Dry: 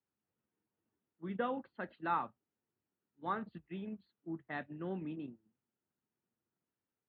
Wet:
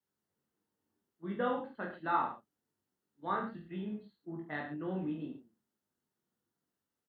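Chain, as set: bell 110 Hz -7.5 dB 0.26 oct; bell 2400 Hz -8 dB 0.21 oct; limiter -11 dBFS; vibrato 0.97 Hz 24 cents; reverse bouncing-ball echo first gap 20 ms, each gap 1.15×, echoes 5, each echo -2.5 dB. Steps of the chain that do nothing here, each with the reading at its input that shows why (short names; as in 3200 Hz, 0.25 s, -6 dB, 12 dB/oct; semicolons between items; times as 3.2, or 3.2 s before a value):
limiter -11 dBFS: input peak -22.0 dBFS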